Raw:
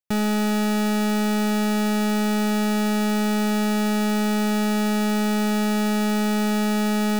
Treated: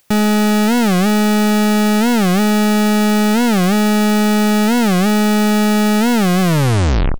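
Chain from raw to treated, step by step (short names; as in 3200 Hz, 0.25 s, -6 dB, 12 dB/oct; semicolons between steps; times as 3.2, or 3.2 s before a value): tape stop at the end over 0.88 s; speakerphone echo 0.1 s, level -23 dB; upward compressor, threshold -46 dBFS; record warp 45 rpm, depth 250 cents; gain +8.5 dB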